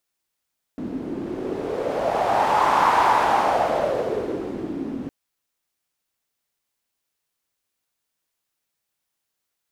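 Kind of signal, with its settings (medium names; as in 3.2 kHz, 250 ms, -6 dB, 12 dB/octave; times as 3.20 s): wind-like swept noise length 4.31 s, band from 270 Hz, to 950 Hz, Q 4.2, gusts 1, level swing 13 dB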